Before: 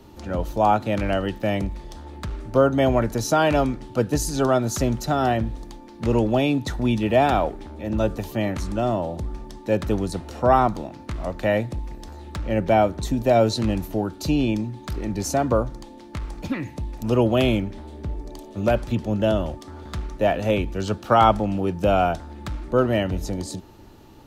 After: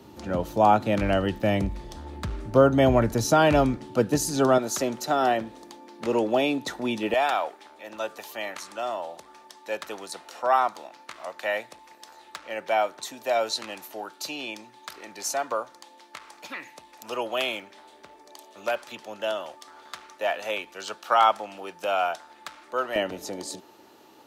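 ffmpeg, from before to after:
-af "asetnsamples=n=441:p=0,asendcmd='1.01 highpass f 48;3.77 highpass f 150;4.58 highpass f 350;7.14 highpass f 860;22.96 highpass f 400',highpass=110"

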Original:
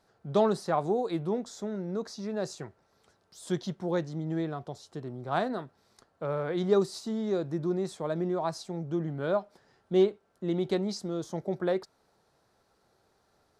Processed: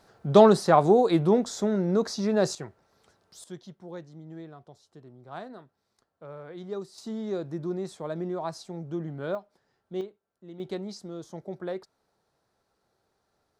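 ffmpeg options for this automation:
-af "asetnsamples=n=441:p=0,asendcmd='2.55 volume volume 2dB;3.44 volume volume -11dB;6.98 volume volume -2dB;9.35 volume volume -8.5dB;10.01 volume volume -15dB;10.6 volume volume -5.5dB',volume=2.82"

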